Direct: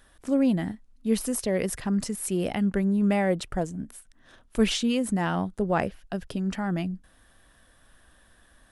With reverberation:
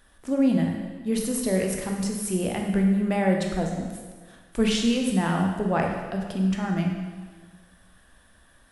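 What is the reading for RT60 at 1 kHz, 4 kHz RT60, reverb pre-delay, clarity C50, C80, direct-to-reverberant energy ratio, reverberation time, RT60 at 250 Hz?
1.5 s, 1.4 s, 8 ms, 3.0 dB, 5.0 dB, 1.0 dB, 1.5 s, 1.6 s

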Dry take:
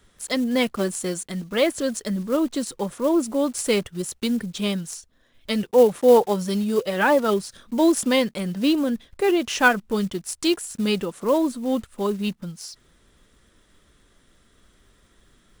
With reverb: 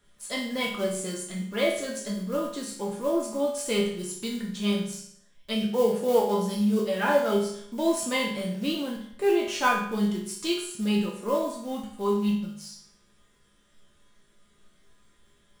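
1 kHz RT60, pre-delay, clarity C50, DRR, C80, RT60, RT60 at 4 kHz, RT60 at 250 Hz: 0.65 s, 5 ms, 4.5 dB, −3.5 dB, 8.0 dB, 0.65 s, 0.60 s, 0.65 s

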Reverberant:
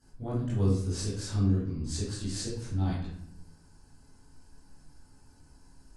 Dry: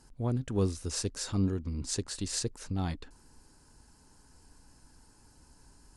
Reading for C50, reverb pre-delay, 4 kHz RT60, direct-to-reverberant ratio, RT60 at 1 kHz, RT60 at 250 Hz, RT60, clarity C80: 2.0 dB, 17 ms, 0.45 s, −11.5 dB, 0.60 s, 1.1 s, 0.70 s, 6.0 dB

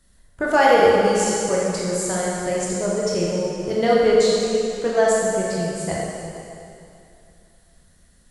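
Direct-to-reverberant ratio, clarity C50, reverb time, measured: −5.5 dB, −3.0 dB, 2.6 s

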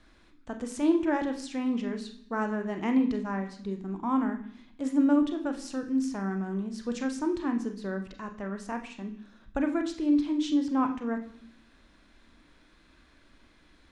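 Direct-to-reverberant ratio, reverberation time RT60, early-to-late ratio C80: 5.0 dB, 0.65 s, 13.5 dB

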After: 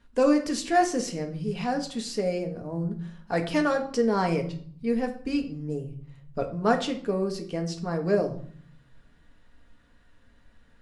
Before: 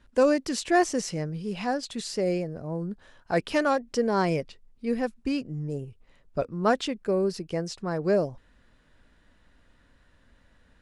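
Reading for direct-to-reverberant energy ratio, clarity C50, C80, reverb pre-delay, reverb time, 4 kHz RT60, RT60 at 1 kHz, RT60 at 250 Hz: 3.0 dB, 12.0 dB, 15.5 dB, 4 ms, 0.55 s, 0.45 s, 0.55 s, 0.95 s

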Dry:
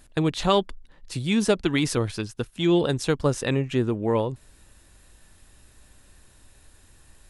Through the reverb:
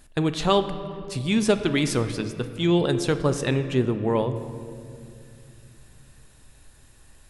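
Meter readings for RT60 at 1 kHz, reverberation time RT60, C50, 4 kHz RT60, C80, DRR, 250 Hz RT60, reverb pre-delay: 2.2 s, 2.5 s, 11.0 dB, 1.4 s, 12.0 dB, 9.0 dB, 3.6 s, 5 ms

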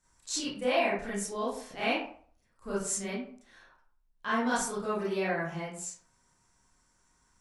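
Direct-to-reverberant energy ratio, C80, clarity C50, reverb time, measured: −9.5 dB, 8.0 dB, 1.5 dB, 0.50 s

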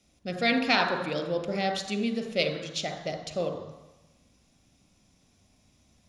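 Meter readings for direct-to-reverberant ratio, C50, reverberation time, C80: 7.5 dB, 9.0 dB, 1.1 s, 11.0 dB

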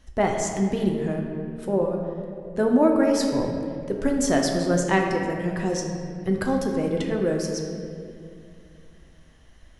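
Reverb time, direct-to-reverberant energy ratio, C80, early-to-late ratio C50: 2.4 s, 1.0 dB, 4.5 dB, 3.5 dB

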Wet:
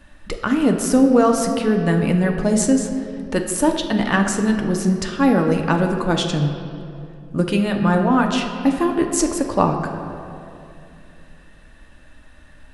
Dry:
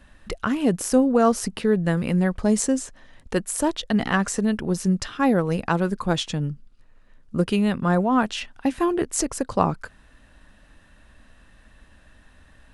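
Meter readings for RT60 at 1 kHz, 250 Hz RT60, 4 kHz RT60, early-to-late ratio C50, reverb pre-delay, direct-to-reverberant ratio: 2.4 s, 3.0 s, 1.5 s, 6.0 dB, 3 ms, 3.0 dB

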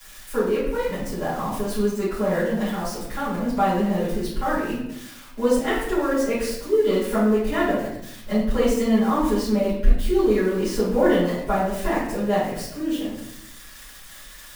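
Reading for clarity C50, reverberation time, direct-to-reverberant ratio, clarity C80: 1.5 dB, 0.75 s, −13.0 dB, 5.5 dB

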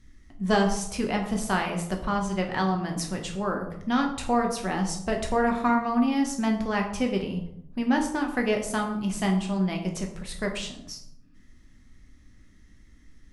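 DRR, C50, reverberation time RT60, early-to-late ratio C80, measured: 1.5 dB, 8.0 dB, 0.75 s, 10.5 dB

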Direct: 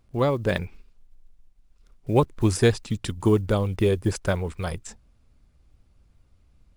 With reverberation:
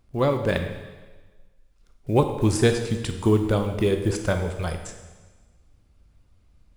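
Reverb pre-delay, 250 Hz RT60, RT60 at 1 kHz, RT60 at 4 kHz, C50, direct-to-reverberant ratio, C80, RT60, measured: 13 ms, 1.3 s, 1.3 s, 1.3 s, 7.5 dB, 5.5 dB, 9.0 dB, 1.3 s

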